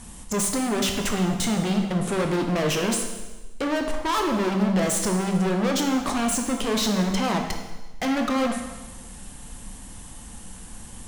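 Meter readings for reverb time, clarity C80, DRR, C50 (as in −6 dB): 1.2 s, 7.0 dB, 3.0 dB, 5.5 dB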